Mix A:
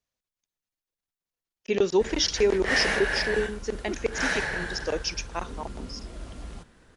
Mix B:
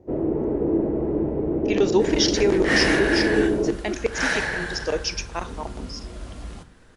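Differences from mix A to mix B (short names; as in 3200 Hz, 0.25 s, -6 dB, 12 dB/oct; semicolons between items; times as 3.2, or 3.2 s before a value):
first sound: unmuted; reverb: on, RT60 0.50 s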